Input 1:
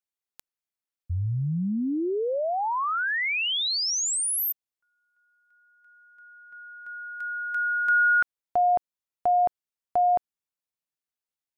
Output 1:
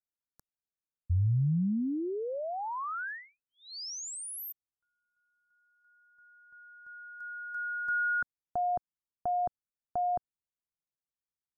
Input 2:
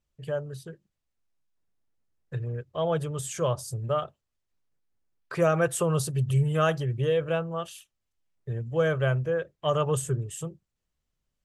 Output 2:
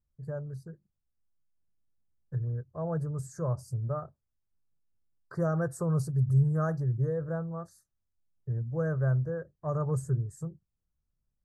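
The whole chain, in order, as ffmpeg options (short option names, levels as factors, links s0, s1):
-af "asuperstop=centerf=2800:order=8:qfactor=0.99,bass=f=250:g=10,treble=f=4000:g=-5,volume=0.355"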